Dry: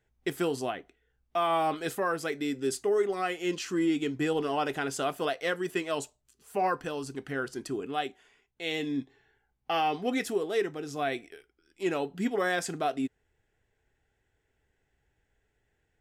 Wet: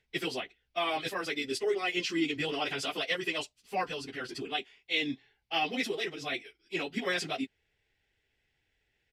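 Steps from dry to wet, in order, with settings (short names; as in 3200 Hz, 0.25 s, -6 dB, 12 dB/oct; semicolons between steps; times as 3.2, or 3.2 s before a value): downsampling 32000 Hz; plain phase-vocoder stretch 0.57×; band shelf 3300 Hz +11.5 dB; gain -1.5 dB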